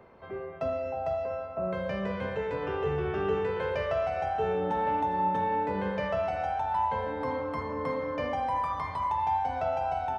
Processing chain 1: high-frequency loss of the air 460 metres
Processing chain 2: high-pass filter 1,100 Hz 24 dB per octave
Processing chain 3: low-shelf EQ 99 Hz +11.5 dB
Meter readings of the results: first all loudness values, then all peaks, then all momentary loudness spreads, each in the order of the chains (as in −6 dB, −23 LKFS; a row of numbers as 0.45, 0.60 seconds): −32.0, −39.0, −30.0 LKFS; −18.5, −26.0, −16.5 dBFS; 5, 9, 5 LU